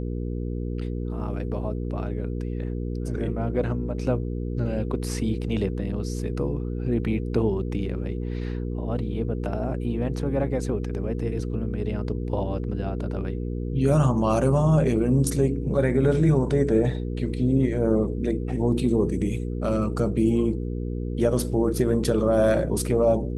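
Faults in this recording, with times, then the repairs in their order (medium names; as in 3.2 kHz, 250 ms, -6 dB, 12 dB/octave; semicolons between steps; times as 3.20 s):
hum 60 Hz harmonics 8 -29 dBFS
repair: de-hum 60 Hz, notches 8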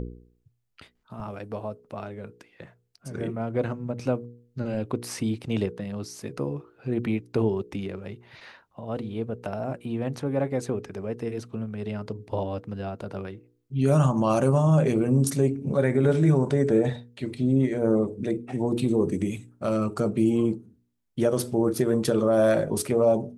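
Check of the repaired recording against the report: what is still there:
nothing left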